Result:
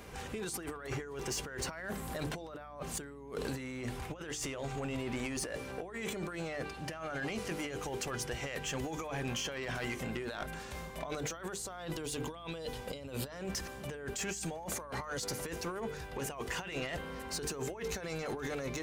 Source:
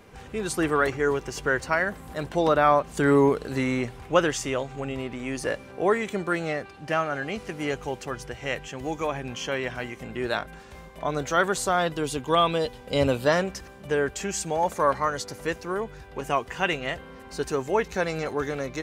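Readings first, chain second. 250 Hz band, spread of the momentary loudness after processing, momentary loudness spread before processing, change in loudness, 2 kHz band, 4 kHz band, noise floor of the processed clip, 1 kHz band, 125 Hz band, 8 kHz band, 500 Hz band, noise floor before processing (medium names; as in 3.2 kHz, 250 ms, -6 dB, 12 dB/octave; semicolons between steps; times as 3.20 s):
-11.5 dB, 4 LU, 11 LU, -12.5 dB, -12.0 dB, -7.5 dB, -47 dBFS, -16.5 dB, -8.5 dB, -4.0 dB, -14.5 dB, -45 dBFS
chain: treble shelf 4.4 kHz +6.5 dB; hum notches 50/100/150/200/250/300/350/400/450 Hz; compressor with a negative ratio -34 dBFS, ratio -1; hum 60 Hz, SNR 20 dB; saturation -24.5 dBFS, distortion -15 dB; trim -5 dB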